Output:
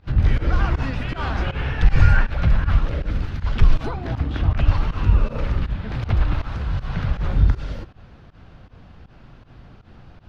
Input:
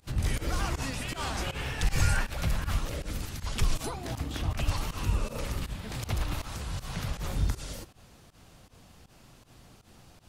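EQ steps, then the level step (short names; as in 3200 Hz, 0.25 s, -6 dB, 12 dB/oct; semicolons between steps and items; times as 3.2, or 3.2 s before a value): air absorption 290 m; low shelf 140 Hz +6.5 dB; bell 1500 Hz +4.5 dB 0.42 oct; +7.0 dB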